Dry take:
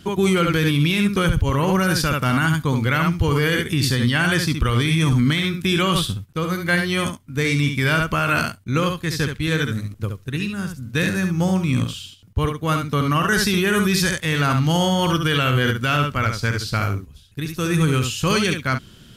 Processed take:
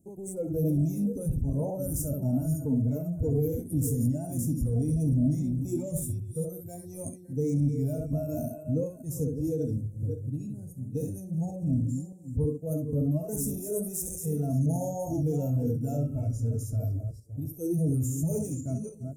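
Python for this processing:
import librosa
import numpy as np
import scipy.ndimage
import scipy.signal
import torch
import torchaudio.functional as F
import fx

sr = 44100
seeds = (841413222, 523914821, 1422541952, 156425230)

y = fx.reverse_delay_fb(x, sr, ms=282, feedback_pct=44, wet_db=-7.5)
y = 10.0 ** (-17.5 / 20.0) * np.tanh(y / 10.0 ** (-17.5 / 20.0))
y = fx.noise_reduce_blind(y, sr, reduce_db=16)
y = scipy.signal.sosfilt(scipy.signal.cheby2(4, 40, [1100.0, 4700.0], 'bandstop', fs=sr, output='sos'), y)
y = fx.low_shelf(y, sr, hz=120.0, db=-6.0)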